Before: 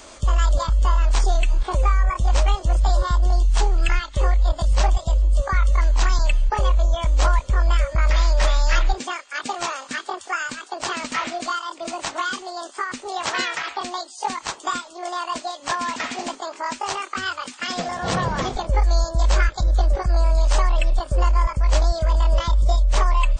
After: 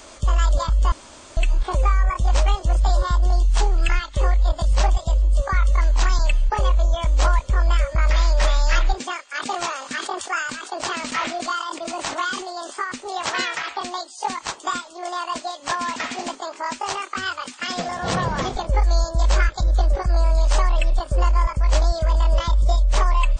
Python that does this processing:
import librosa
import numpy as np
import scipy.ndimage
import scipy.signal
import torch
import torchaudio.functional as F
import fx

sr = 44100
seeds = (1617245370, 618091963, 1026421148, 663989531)

y = fx.sustainer(x, sr, db_per_s=65.0, at=(9.34, 12.83))
y = fx.edit(y, sr, fx.room_tone_fill(start_s=0.92, length_s=0.45), tone=tone)